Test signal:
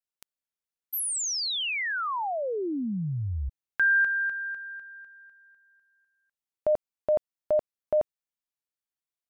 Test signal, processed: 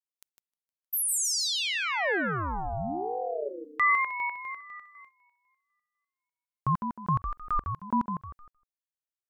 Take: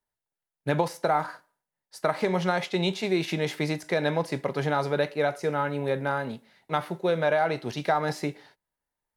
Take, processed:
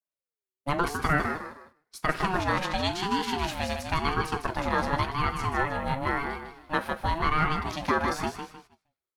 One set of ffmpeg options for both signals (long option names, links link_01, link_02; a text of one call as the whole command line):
ffmpeg -i in.wav -af "highshelf=frequency=3900:gain=5,aecho=1:1:155|310|465|620:0.447|0.147|0.0486|0.0161,adynamicequalizer=threshold=0.00708:dfrequency=1100:dqfactor=2.1:tfrequency=1100:tqfactor=2.1:attack=5:release=100:ratio=0.375:range=3:mode=boostabove:tftype=bell,agate=range=-10dB:threshold=-50dB:ratio=16:release=127:detection=rms,aeval=exprs='val(0)*sin(2*PI*500*n/s+500*0.25/0.94*sin(2*PI*0.94*n/s))':channel_layout=same" out.wav